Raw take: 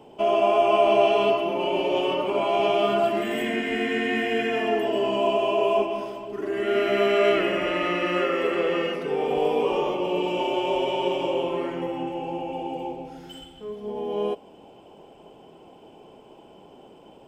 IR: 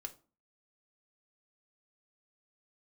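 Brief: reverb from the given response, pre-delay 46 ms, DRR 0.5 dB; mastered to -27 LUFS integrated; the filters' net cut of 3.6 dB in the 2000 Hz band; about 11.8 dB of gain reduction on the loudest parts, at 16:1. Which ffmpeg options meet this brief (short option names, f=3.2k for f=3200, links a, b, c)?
-filter_complex "[0:a]equalizer=f=2k:t=o:g=-4.5,acompressor=threshold=-27dB:ratio=16,asplit=2[a][b];[1:a]atrim=start_sample=2205,adelay=46[c];[b][c]afir=irnorm=-1:irlink=0,volume=3dB[d];[a][d]amix=inputs=2:normalize=0,volume=2dB"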